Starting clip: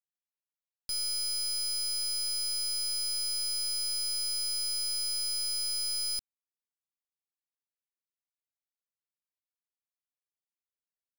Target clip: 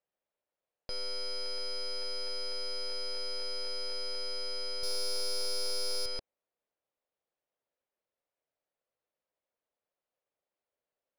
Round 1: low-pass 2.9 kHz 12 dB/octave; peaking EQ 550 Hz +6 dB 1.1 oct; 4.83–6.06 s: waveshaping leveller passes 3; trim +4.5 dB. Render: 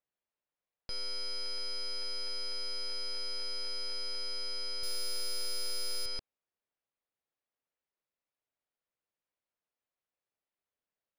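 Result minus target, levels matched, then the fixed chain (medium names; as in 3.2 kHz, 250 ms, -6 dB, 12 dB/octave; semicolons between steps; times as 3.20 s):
500 Hz band -7.0 dB
low-pass 2.9 kHz 12 dB/octave; peaking EQ 550 Hz +15 dB 1.1 oct; 4.83–6.06 s: waveshaping leveller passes 3; trim +4.5 dB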